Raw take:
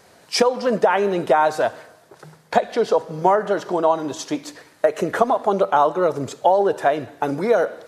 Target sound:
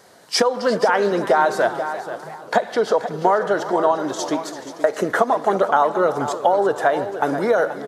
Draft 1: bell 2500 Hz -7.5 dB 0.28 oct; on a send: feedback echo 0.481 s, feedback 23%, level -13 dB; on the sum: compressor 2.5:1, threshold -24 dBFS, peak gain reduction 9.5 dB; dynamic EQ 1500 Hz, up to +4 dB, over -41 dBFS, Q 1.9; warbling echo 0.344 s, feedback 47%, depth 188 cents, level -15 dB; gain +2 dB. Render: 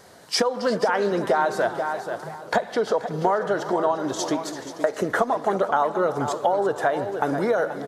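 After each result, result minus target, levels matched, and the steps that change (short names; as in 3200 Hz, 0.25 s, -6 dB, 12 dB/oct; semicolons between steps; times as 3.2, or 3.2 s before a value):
compressor: peak gain reduction +5 dB; 125 Hz band +4.0 dB
change: compressor 2.5:1, threshold -15.5 dBFS, peak gain reduction 4.5 dB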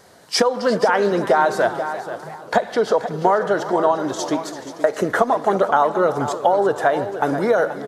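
125 Hz band +3.0 dB
add after dynamic EQ: HPF 170 Hz 6 dB/oct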